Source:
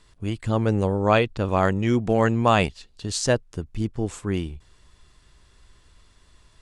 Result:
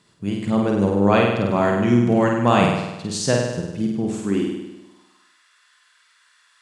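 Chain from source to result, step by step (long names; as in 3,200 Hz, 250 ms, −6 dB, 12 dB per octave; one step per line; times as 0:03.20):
high-pass filter sweep 160 Hz → 1,500 Hz, 0:04.10–0:05.31
flutter between parallel walls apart 8.6 metres, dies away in 1 s
level −1 dB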